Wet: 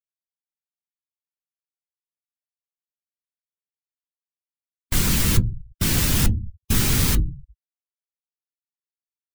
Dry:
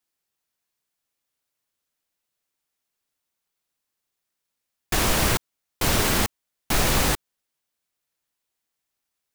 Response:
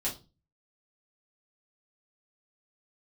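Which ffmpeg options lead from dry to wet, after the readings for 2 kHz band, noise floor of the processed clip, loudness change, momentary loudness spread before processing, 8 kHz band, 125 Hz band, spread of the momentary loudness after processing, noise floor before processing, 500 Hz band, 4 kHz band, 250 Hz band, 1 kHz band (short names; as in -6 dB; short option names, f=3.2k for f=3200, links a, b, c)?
-3.5 dB, under -85 dBFS, +1.5 dB, 7 LU, +1.5 dB, +7.0 dB, 9 LU, -82 dBFS, -6.5 dB, -0.5 dB, +3.5 dB, -8.0 dB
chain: -filter_complex "[0:a]asplit=2[a][b];[1:a]atrim=start_sample=2205,asetrate=38808,aresample=44100[c];[b][c]afir=irnorm=-1:irlink=0,volume=-13dB[d];[a][d]amix=inputs=2:normalize=0,aeval=exprs='(mod(7.08*val(0)+1,2)-1)/7.08':c=same,afftfilt=real='re*gte(hypot(re,im),0.00794)':imag='im*gte(hypot(re,im),0.00794)':win_size=1024:overlap=0.75,asubboost=boost=9.5:cutoff=200,afftdn=nr=22:nf=-33"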